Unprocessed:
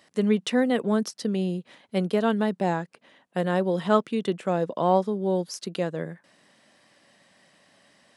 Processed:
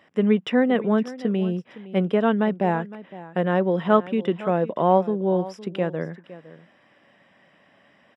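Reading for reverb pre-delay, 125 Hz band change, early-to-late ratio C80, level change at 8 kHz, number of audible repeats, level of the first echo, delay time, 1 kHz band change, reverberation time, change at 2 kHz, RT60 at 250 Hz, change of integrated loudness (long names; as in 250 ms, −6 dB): no reverb audible, +3.0 dB, no reverb audible, below −10 dB, 1, −17.0 dB, 511 ms, +3.0 dB, no reverb audible, +3.0 dB, no reverb audible, +3.0 dB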